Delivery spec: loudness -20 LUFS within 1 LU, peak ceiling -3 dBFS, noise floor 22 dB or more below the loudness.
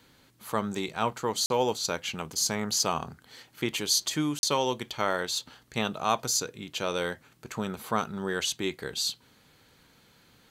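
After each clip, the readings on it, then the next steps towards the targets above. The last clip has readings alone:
dropouts 2; longest dropout 41 ms; loudness -29.5 LUFS; peak level -10.0 dBFS; loudness target -20.0 LUFS
-> interpolate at 1.46/4.39 s, 41 ms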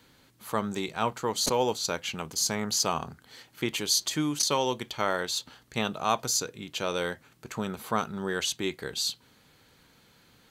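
dropouts 0; loudness -29.0 LUFS; peak level -10.0 dBFS; loudness target -20.0 LUFS
-> trim +9 dB; peak limiter -3 dBFS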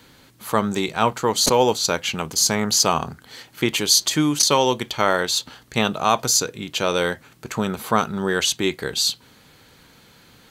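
loudness -20.0 LUFS; peak level -3.0 dBFS; noise floor -52 dBFS

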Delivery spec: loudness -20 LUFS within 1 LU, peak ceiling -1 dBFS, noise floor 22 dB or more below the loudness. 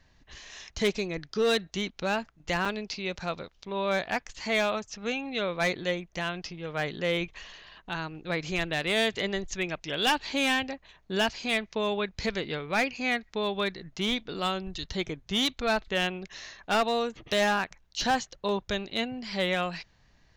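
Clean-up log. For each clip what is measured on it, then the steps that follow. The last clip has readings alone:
clipped samples 1.0%; clipping level -20.0 dBFS; dropouts 1; longest dropout 4.8 ms; loudness -29.5 LUFS; peak level -20.0 dBFS; loudness target -20.0 LUFS
-> clip repair -20 dBFS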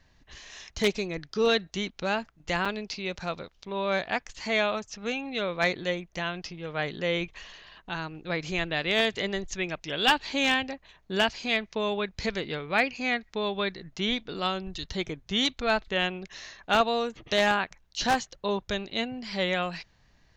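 clipped samples 0.0%; dropouts 1; longest dropout 4.8 ms
-> interpolate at 2.65 s, 4.8 ms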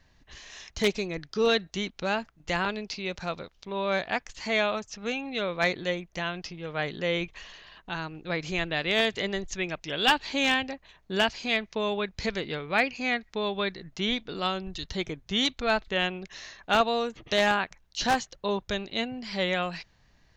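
dropouts 0; loudness -28.5 LUFS; peak level -11.0 dBFS; loudness target -20.0 LUFS
-> trim +8.5 dB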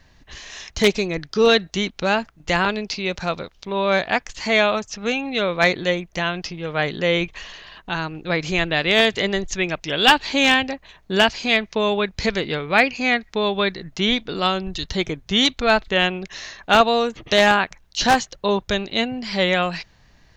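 loudness -20.0 LUFS; peak level -2.5 dBFS; noise floor -55 dBFS

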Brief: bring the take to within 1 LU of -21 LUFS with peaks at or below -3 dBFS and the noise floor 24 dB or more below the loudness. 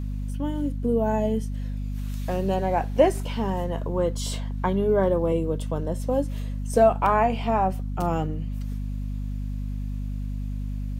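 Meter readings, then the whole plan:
tick rate 15 per s; hum 50 Hz; highest harmonic 250 Hz; hum level -27 dBFS; loudness -26.0 LUFS; peak level -6.0 dBFS; loudness target -21.0 LUFS
-> de-click; hum notches 50/100/150/200/250 Hz; trim +5 dB; peak limiter -3 dBFS

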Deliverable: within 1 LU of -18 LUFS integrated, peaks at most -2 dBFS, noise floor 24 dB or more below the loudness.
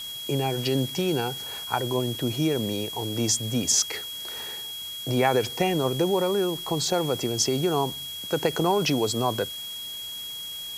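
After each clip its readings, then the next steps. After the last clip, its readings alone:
steady tone 3.3 kHz; tone level -34 dBFS; noise floor -36 dBFS; noise floor target -50 dBFS; loudness -26.0 LUFS; peak level -8.5 dBFS; loudness target -18.0 LUFS
-> band-stop 3.3 kHz, Q 30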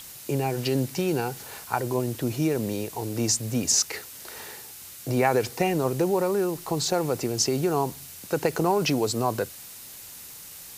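steady tone not found; noise floor -43 dBFS; noise floor target -50 dBFS
-> noise print and reduce 7 dB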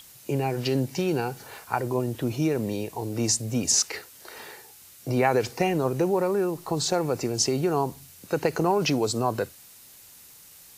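noise floor -50 dBFS; loudness -26.0 LUFS; peak level -9.0 dBFS; loudness target -18.0 LUFS
-> trim +8 dB; peak limiter -2 dBFS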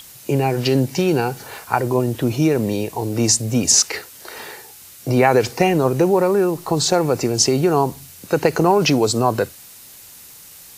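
loudness -18.0 LUFS; peak level -2.0 dBFS; noise floor -42 dBFS

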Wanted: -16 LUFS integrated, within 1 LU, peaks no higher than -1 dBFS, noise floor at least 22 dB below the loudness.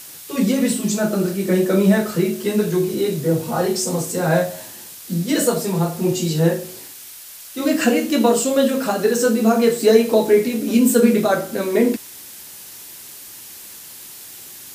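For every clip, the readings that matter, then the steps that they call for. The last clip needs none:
noise floor -38 dBFS; noise floor target -41 dBFS; loudness -18.5 LUFS; peak level -1.5 dBFS; loudness target -16.0 LUFS
-> noise print and reduce 6 dB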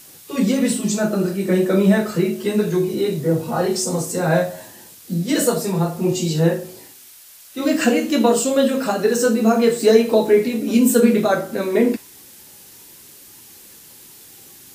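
noise floor -44 dBFS; loudness -18.5 LUFS; peak level -1.5 dBFS; loudness target -16.0 LUFS
-> trim +2.5 dB; peak limiter -1 dBFS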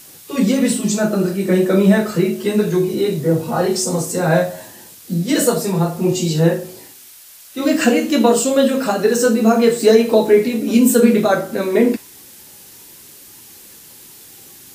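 loudness -16.0 LUFS; peak level -1.0 dBFS; noise floor -42 dBFS

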